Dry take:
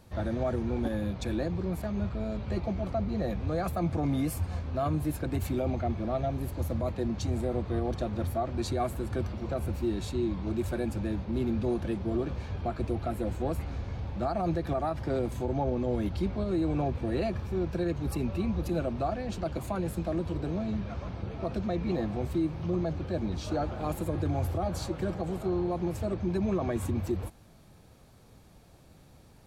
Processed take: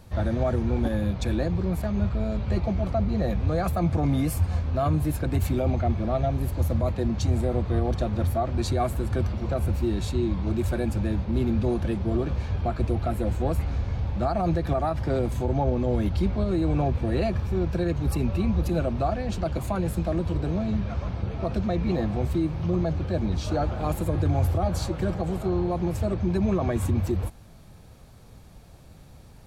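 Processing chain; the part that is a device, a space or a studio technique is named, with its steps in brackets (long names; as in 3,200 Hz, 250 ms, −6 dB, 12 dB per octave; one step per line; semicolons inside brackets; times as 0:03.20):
low shelf boost with a cut just above (low-shelf EQ 100 Hz +6.5 dB; parametric band 320 Hz −2.5 dB 0.77 octaves)
level +4.5 dB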